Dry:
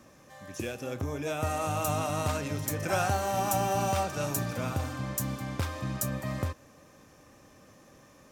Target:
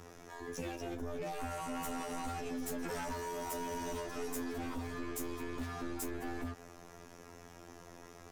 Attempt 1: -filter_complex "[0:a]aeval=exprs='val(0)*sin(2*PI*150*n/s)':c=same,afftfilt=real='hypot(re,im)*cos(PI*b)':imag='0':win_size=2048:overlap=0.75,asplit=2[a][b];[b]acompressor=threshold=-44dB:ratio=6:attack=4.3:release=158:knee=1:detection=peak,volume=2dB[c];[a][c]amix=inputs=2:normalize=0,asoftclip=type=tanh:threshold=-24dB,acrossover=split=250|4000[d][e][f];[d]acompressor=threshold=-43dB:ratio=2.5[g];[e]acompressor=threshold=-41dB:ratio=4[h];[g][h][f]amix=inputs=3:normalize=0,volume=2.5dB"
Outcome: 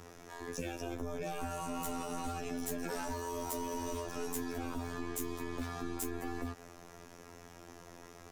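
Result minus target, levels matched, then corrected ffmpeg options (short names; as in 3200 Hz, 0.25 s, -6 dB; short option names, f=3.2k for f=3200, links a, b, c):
soft clip: distortion -6 dB
-filter_complex "[0:a]aeval=exprs='val(0)*sin(2*PI*150*n/s)':c=same,afftfilt=real='hypot(re,im)*cos(PI*b)':imag='0':win_size=2048:overlap=0.75,asplit=2[a][b];[b]acompressor=threshold=-44dB:ratio=6:attack=4.3:release=158:knee=1:detection=peak,volume=2dB[c];[a][c]amix=inputs=2:normalize=0,asoftclip=type=tanh:threshold=-33dB,acrossover=split=250|4000[d][e][f];[d]acompressor=threshold=-43dB:ratio=2.5[g];[e]acompressor=threshold=-41dB:ratio=4[h];[g][h][f]amix=inputs=3:normalize=0,volume=2.5dB"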